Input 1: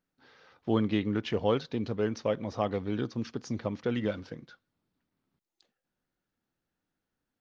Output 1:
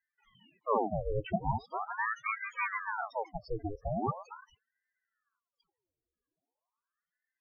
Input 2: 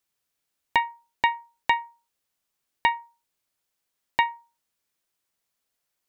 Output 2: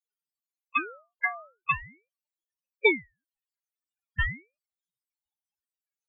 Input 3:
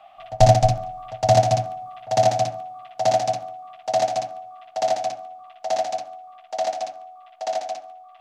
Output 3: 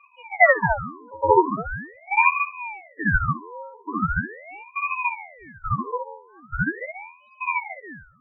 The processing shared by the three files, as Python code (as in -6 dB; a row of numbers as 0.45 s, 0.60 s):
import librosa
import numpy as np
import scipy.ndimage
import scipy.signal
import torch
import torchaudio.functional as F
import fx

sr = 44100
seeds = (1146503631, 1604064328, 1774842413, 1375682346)

y = fx.spec_ripple(x, sr, per_octave=1.6, drift_hz=-2.1, depth_db=15)
y = fx.spec_topn(y, sr, count=4)
y = fx.ring_lfo(y, sr, carrier_hz=1000.0, swing_pct=80, hz=0.41)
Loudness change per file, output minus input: -3.5 LU, -2.0 LU, -0.5 LU